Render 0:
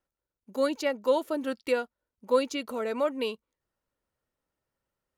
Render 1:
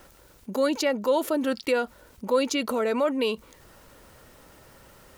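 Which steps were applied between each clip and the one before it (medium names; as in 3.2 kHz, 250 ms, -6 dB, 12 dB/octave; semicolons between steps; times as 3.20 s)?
level flattener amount 50%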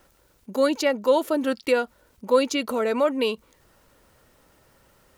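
upward expansion 1.5:1, over -41 dBFS; trim +4.5 dB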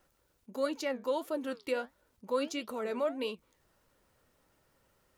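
flange 1.5 Hz, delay 4.7 ms, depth 8.5 ms, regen +73%; trim -7.5 dB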